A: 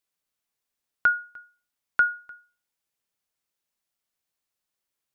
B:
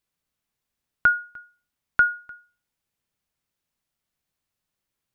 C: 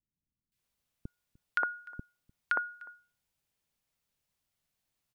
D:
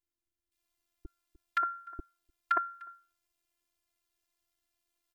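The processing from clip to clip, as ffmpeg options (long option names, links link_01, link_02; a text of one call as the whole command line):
ffmpeg -i in.wav -af "bass=frequency=250:gain=9,treble=frequency=4000:gain=-3,volume=2.5dB" out.wav
ffmpeg -i in.wav -filter_complex "[0:a]acompressor=threshold=-24dB:ratio=3,acrossover=split=310|1400[link_01][link_02][link_03];[link_03]adelay=520[link_04];[link_02]adelay=580[link_05];[link_01][link_05][link_04]amix=inputs=3:normalize=0" out.wav
ffmpeg -i in.wav -af "tremolo=f=88:d=0.667,afftfilt=real='hypot(re,im)*cos(PI*b)':imag='0':win_size=512:overlap=0.75,volume=6.5dB" out.wav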